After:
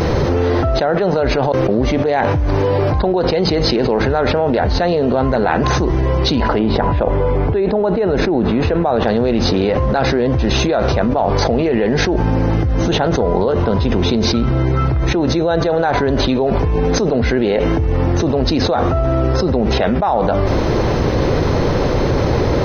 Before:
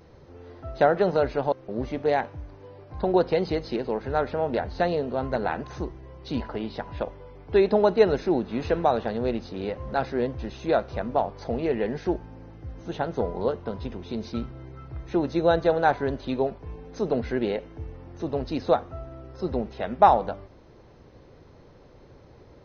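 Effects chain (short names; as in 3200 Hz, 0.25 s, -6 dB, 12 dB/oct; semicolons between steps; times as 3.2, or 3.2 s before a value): 6.58–9.02 LPF 1200 Hz -> 2200 Hz 6 dB/oct; fast leveller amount 100%; gain -3.5 dB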